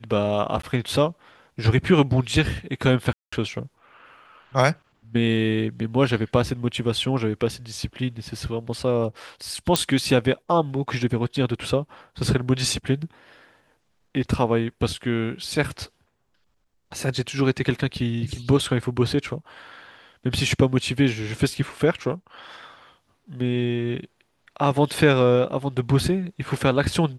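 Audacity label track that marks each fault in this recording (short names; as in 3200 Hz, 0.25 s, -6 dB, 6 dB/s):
0.620000	0.630000	gap 14 ms
3.130000	3.330000	gap 0.195 s
9.760000	9.760000	pop -2 dBFS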